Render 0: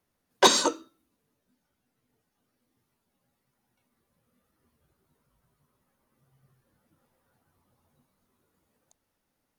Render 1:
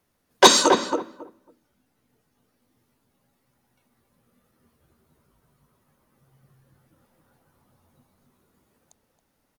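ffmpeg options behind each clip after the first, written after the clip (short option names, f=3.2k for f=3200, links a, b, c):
-filter_complex "[0:a]asplit=2[a][b];[b]adelay=274,lowpass=f=1.1k:p=1,volume=-3.5dB,asplit=2[c][d];[d]adelay=274,lowpass=f=1.1k:p=1,volume=0.18,asplit=2[e][f];[f]adelay=274,lowpass=f=1.1k:p=1,volume=0.18[g];[a][c][e][g]amix=inputs=4:normalize=0,volume=6dB"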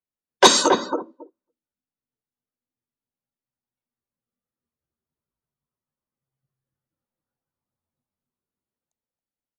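-af "afftdn=nr=27:nf=-34"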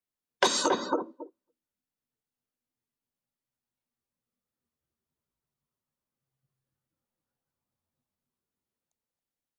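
-af "acompressor=threshold=-22dB:ratio=6"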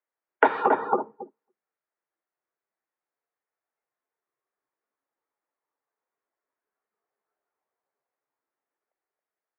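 -af "highpass=f=510:t=q:w=0.5412,highpass=f=510:t=q:w=1.307,lowpass=f=2.2k:t=q:w=0.5176,lowpass=f=2.2k:t=q:w=0.7071,lowpass=f=2.2k:t=q:w=1.932,afreqshift=-110,volume=7.5dB"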